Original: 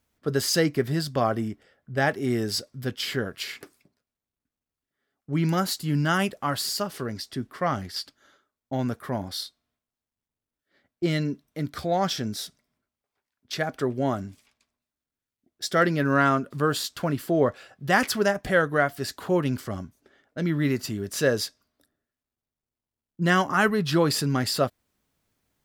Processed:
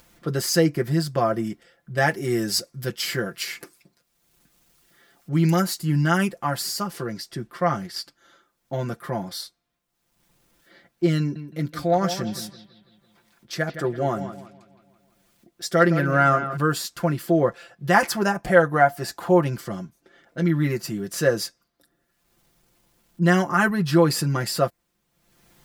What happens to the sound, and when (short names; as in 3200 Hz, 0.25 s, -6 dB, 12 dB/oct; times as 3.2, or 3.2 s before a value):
1.44–5.62 high shelf 2700 Hz +6 dB
11.19–16.57 analogue delay 0.165 s, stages 4096, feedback 32%, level -11 dB
17.94–19.5 bell 790 Hz +7.5 dB
whole clip: upward compressor, threshold -44 dBFS; dynamic EQ 3500 Hz, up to -7 dB, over -47 dBFS, Q 2; comb 5.8 ms, depth 81%